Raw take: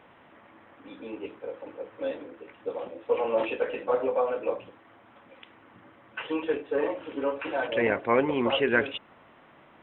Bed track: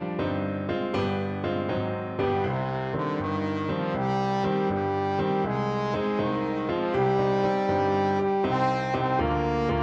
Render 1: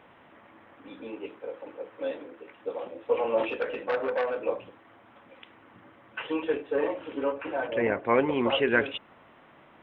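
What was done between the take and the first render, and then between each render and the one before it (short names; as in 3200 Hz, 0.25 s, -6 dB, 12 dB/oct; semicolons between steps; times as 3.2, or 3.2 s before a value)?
1.1–2.91 low shelf 130 Hz -9 dB; 3.49–4.41 core saturation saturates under 1200 Hz; 7.32–8.06 air absorption 360 m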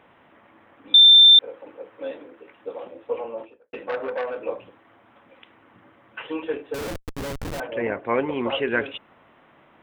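0.94–1.39 bleep 3570 Hz -7.5 dBFS; 2.89–3.73 studio fade out; 6.74–7.6 Schmitt trigger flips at -31.5 dBFS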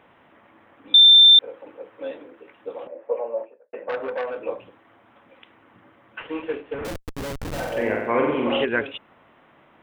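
2.87–3.89 speaker cabinet 270–2000 Hz, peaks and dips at 300 Hz -7 dB, 590 Hz +9 dB, 1300 Hz -5 dB; 6.2–6.85 CVSD 16 kbps; 7.48–8.65 flutter echo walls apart 7.9 m, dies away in 0.93 s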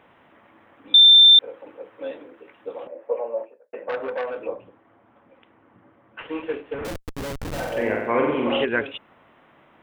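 4.47–6.19 LPF 1000 Hz 6 dB/oct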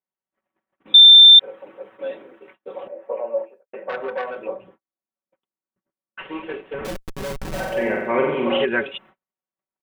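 gate -49 dBFS, range -45 dB; comb 5.3 ms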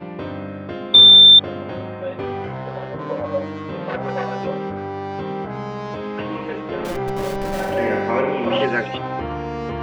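add bed track -1.5 dB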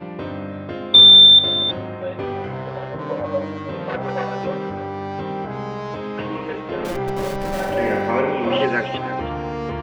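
echo 0.32 s -13.5 dB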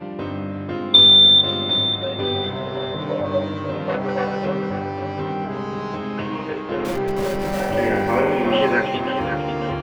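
doubler 20 ms -6.5 dB; feedback echo 0.542 s, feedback 40%, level -9 dB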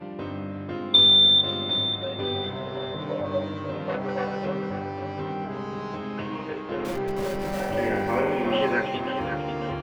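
gain -5.5 dB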